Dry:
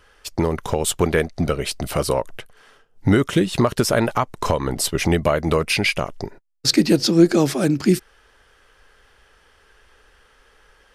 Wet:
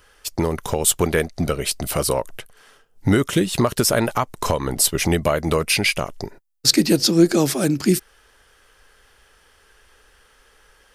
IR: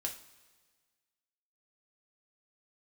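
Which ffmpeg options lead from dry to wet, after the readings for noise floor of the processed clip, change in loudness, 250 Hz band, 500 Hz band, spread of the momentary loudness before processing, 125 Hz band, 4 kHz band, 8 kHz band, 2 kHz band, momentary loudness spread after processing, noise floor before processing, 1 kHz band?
−56 dBFS, +0.5 dB, −1.0 dB, −1.0 dB, 9 LU, −1.0 dB, +2.0 dB, +5.5 dB, 0.0 dB, 9 LU, −56 dBFS, −1.0 dB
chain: -af "highshelf=frequency=6600:gain=11,volume=-1dB"

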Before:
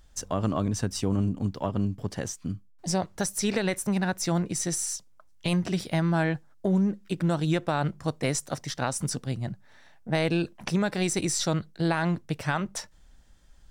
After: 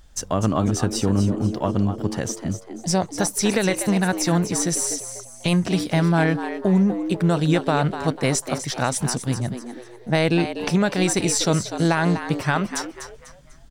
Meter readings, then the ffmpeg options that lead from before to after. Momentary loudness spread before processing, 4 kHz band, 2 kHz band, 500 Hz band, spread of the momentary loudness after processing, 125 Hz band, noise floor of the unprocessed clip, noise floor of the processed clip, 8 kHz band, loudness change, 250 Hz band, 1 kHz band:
8 LU, +6.5 dB, +6.5 dB, +7.0 dB, 8 LU, +6.0 dB, −54 dBFS, −45 dBFS, +6.5 dB, +6.5 dB, +6.5 dB, +7.0 dB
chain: -filter_complex "[0:a]asplit=5[link_01][link_02][link_03][link_04][link_05];[link_02]adelay=247,afreqshift=120,volume=-10dB[link_06];[link_03]adelay=494,afreqshift=240,volume=-19.1dB[link_07];[link_04]adelay=741,afreqshift=360,volume=-28.2dB[link_08];[link_05]adelay=988,afreqshift=480,volume=-37.4dB[link_09];[link_01][link_06][link_07][link_08][link_09]amix=inputs=5:normalize=0,volume=6dB"

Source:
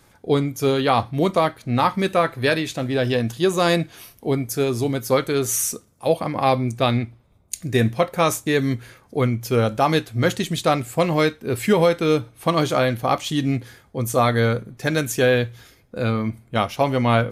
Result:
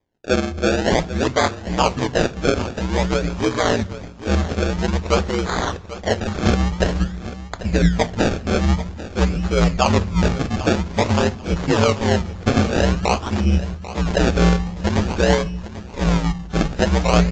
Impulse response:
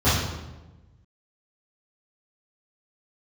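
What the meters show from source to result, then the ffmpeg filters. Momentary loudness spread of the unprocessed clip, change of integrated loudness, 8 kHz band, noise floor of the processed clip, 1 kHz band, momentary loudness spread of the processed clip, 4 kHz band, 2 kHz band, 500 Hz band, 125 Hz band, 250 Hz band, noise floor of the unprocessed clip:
7 LU, +1.0 dB, −2.5 dB, −35 dBFS, −0.5 dB, 6 LU, +1.5 dB, +1.0 dB, −1.0 dB, +3.0 dB, +2.5 dB, −56 dBFS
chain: -filter_complex "[0:a]bandreject=frequency=60:width_type=h:width=6,bandreject=frequency=120:width_type=h:width=6,bandreject=frequency=180:width_type=h:width=6,bandreject=frequency=240:width_type=h:width=6,bandreject=frequency=300:width_type=h:width=6,bandreject=frequency=360:width_type=h:width=6,agate=range=-22dB:threshold=-42dB:ratio=16:detection=peak,asubboost=boost=10.5:cutoff=77,aeval=exprs='val(0)*sin(2*PI*60*n/s)':channel_layout=same,acrusher=samples=31:mix=1:aa=0.000001:lfo=1:lforange=31:lforate=0.5,aecho=1:1:791|1582|2373:0.188|0.0452|0.0108,asplit=2[link_01][link_02];[1:a]atrim=start_sample=2205[link_03];[link_02][link_03]afir=irnorm=-1:irlink=0,volume=-39.5dB[link_04];[link_01][link_04]amix=inputs=2:normalize=0,volume=4dB" -ar 16000 -c:a aac -b:a 48k

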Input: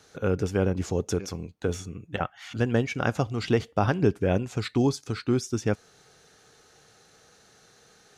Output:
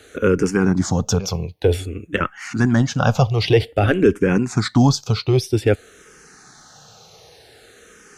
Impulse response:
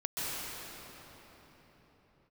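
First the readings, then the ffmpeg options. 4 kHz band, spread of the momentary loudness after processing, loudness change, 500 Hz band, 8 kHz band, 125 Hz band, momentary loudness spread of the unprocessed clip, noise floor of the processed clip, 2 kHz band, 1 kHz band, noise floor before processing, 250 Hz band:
+11.0 dB, 8 LU, +8.5 dB, +8.0 dB, +10.0 dB, +9.5 dB, 9 LU, −49 dBFS, +9.0 dB, +7.0 dB, −59 dBFS, +8.5 dB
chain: -filter_complex "[0:a]apsyclip=18dB,asplit=2[link_01][link_02];[link_02]afreqshift=-0.52[link_03];[link_01][link_03]amix=inputs=2:normalize=1,volume=-4.5dB"

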